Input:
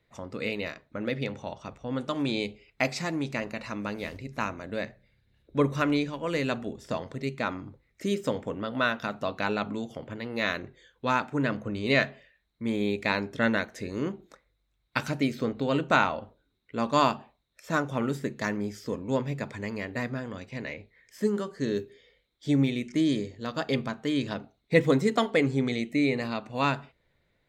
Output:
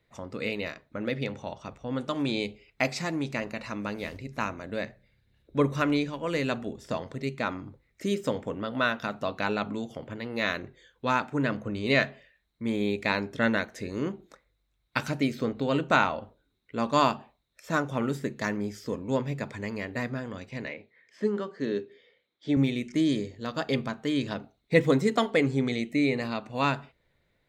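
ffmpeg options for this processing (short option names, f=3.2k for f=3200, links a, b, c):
-filter_complex "[0:a]asettb=1/sr,asplit=3[a][b][c];[a]atrim=end=20.684[d];[b]atrim=start=20.68:end=22.57,asetpts=PTS-STARTPTS,afade=t=in:d=0.004:c=qsin,afade=t=out:st=1.886:d=0.004:c=qsin,highpass=190,lowpass=3.8k[e];[c]atrim=start=22.566[f];[d][e]acrossfade=d=0.004:c1=hsin:c2=qsin[g];[g][f]acrossfade=d=0.004:c1=qsin:c2=hsin"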